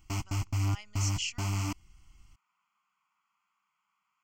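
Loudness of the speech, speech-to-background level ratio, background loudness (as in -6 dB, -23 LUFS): -37.0 LUFS, -4.0 dB, -33.0 LUFS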